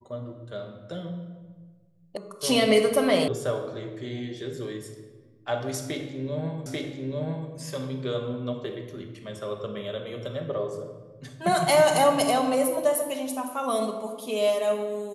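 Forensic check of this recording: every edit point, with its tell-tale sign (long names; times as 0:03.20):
0:02.17: cut off before it has died away
0:03.28: cut off before it has died away
0:06.66: the same again, the last 0.84 s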